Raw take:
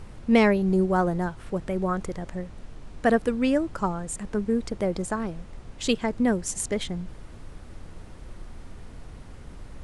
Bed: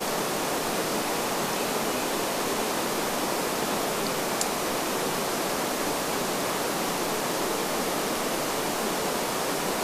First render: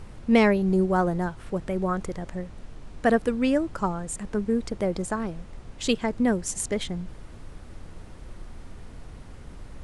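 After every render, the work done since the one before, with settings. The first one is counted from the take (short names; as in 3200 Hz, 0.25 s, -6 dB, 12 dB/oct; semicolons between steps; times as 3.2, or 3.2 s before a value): nothing audible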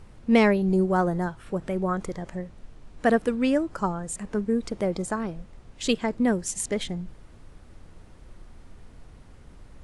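noise print and reduce 6 dB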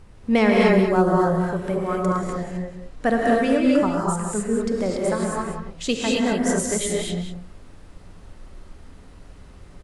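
echo 0.185 s -9 dB; non-linear reverb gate 0.29 s rising, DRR -3 dB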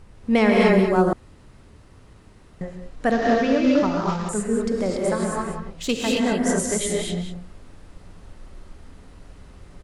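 1.13–2.61 room tone; 3.11–4.29 CVSD 32 kbps; 5.69–6.26 self-modulated delay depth 0.059 ms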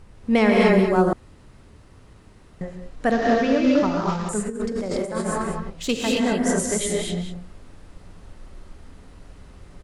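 4.46–5.7 negative-ratio compressor -25 dBFS, ratio -0.5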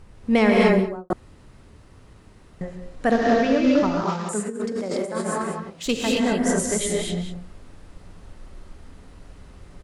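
0.64–1.1 studio fade out; 2.81–3.49 flutter echo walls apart 10.9 m, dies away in 0.44 s; 4.04–5.86 HPF 170 Hz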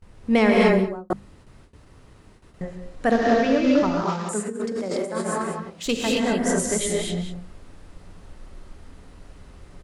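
notches 50/100/150/200/250 Hz; gate with hold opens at -40 dBFS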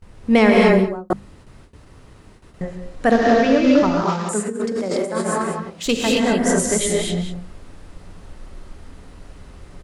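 gain +4.5 dB; limiter -3 dBFS, peak gain reduction 2 dB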